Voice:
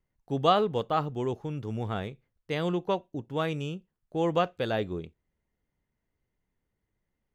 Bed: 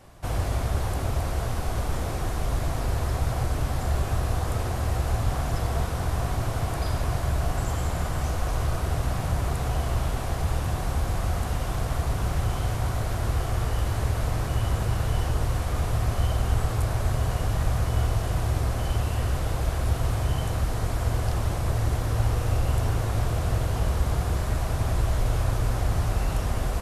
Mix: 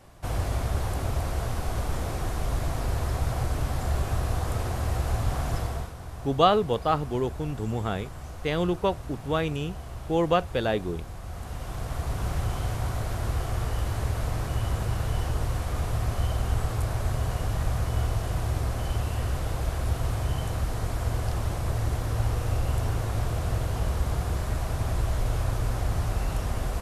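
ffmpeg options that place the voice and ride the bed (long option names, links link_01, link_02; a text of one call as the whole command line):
ffmpeg -i stem1.wav -i stem2.wav -filter_complex "[0:a]adelay=5950,volume=3dB[link_01];[1:a]volume=8.5dB,afade=type=out:start_time=5.55:duration=0.39:silence=0.281838,afade=type=in:start_time=11.23:duration=1.06:silence=0.316228[link_02];[link_01][link_02]amix=inputs=2:normalize=0" out.wav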